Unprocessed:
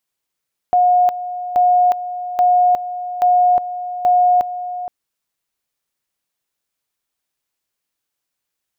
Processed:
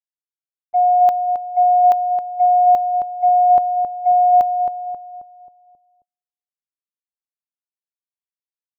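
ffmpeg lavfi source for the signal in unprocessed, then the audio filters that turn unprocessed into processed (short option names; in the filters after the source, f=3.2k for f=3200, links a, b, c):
-f lavfi -i "aevalsrc='pow(10,(-9.5-13*gte(mod(t,0.83),0.36))/20)*sin(2*PI*720*t)':d=4.15:s=44100"
-filter_complex "[0:a]agate=range=-36dB:threshold=-14dB:ratio=16:detection=peak,asplit=2[a][b];[b]adelay=268,lowpass=f=1k:p=1,volume=-5dB,asplit=2[c][d];[d]adelay=268,lowpass=f=1k:p=1,volume=0.49,asplit=2[e][f];[f]adelay=268,lowpass=f=1k:p=1,volume=0.49,asplit=2[g][h];[h]adelay=268,lowpass=f=1k:p=1,volume=0.49,asplit=2[i][j];[j]adelay=268,lowpass=f=1k:p=1,volume=0.49,asplit=2[k][l];[l]adelay=268,lowpass=f=1k:p=1,volume=0.49[m];[a][c][e][g][i][k][m]amix=inputs=7:normalize=0"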